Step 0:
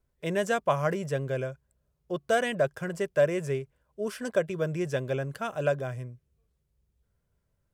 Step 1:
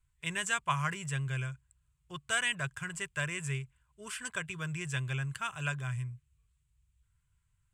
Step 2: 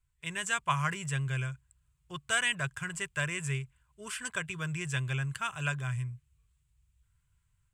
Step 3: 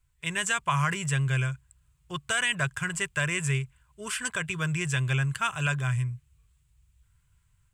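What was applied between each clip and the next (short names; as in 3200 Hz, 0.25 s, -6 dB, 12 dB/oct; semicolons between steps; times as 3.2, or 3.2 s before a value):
EQ curve 130 Hz 0 dB, 220 Hz -17 dB, 390 Hz -18 dB, 560 Hz -26 dB, 980 Hz -3 dB, 1800 Hz -1 dB, 2700 Hz +4 dB, 5500 Hz -6 dB, 7800 Hz +8 dB, 13000 Hz -9 dB; gain +1.5 dB
AGC gain up to 4.5 dB; gain -2.5 dB
limiter -21.5 dBFS, peak gain reduction 7 dB; gain +6.5 dB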